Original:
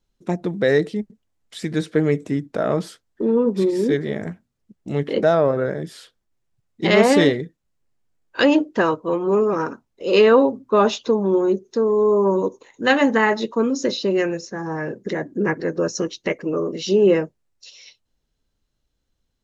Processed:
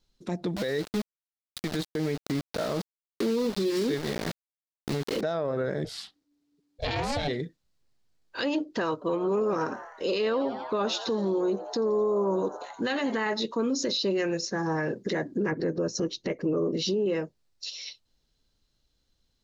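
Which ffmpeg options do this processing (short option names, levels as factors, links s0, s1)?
-filter_complex "[0:a]asettb=1/sr,asplit=3[s0][s1][s2];[s0]atrim=end=0.564[s3];[s1]atrim=start=0.56:end=5.21,asetpts=PTS-STARTPTS,afade=t=in:d=0.004:c=qsin,afade=t=out:st=4.646:d=0.004:c=qsin,aeval=exprs='val(0)*gte(abs(val(0)),0.0447)':c=same[s4];[s2]atrim=start=5.206[s5];[s3][s4]acrossfade=d=0.004:c1=hsin:c2=qsin[s6];[s6][s5]acrossfade=d=0.004:c1=qsin:c2=hsin,asplit=3[s7][s8][s9];[s7]afade=t=out:st=5.84:d=0.02[s10];[s8]aeval=exprs='val(0)*sin(2*PI*290*n/s)':c=same,afade=t=in:st=5.84:d=0.02,afade=t=out:st=7.27:d=0.02[s11];[s9]afade=t=in:st=7.27:d=0.02[s12];[s10][s11][s12]amix=inputs=3:normalize=0,asettb=1/sr,asplit=3[s13][s14][s15];[s13]atrim=end=8.934[s16];[s14]atrim=start=8.93:end=13.16,asetpts=PTS-STARTPTS,afade=t=in:d=0.004:c=qsin,afade=t=out:st=4.226:d=0.004:c=qsin,asplit=6[s17][s18][s19][s20][s21][s22];[s18]adelay=85,afreqshift=120,volume=0.126[s23];[s19]adelay=170,afreqshift=240,volume=0.0759[s24];[s20]adelay=255,afreqshift=360,volume=0.0452[s25];[s21]adelay=340,afreqshift=480,volume=0.0272[s26];[s22]adelay=425,afreqshift=600,volume=0.0164[s27];[s17][s23][s24][s25][s26][s27]amix=inputs=6:normalize=0,atrim=end_sample=186543[s28];[s15]atrim=start=13.156[s29];[s16][s28]acrossfade=d=0.004:c1=hsin:c2=qsin[s30];[s30][s29]acrossfade=d=0.004:c1=qsin:c2=hsin,asettb=1/sr,asplit=3[s31][s32][s33];[s31]atrim=end=15.514[s34];[s32]atrim=start=15.51:end=17.06,asetpts=PTS-STARTPTS,afade=t=in:d=0.004:c=qsin,afade=t=out:st=1.546:d=0.004:c=qsin,tiltshelf=f=820:g=5.5[s35];[s33]atrim=start=17.056[s36];[s34][s35]acrossfade=d=0.004:c1=hsin:c2=qsin[s37];[s37][s36]acrossfade=d=0.004:c1=qsin:c2=hsin,equalizer=f=4400:t=o:w=0.82:g=9,acompressor=threshold=0.0631:ratio=4,alimiter=limit=0.1:level=0:latency=1:release=11"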